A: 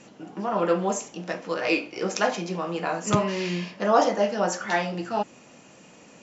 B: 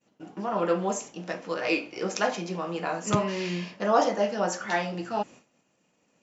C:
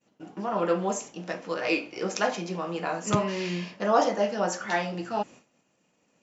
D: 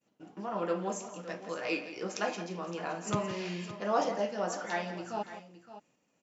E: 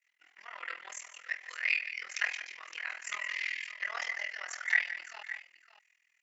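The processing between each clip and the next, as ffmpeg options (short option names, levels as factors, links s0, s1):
-af "agate=range=0.0224:threshold=0.0112:ratio=3:detection=peak,volume=0.75"
-af anull
-af "aecho=1:1:169|566:0.224|0.2,volume=0.447"
-af "highpass=f=2000:t=q:w=9.5,tremolo=f=41:d=0.947,volume=1.26"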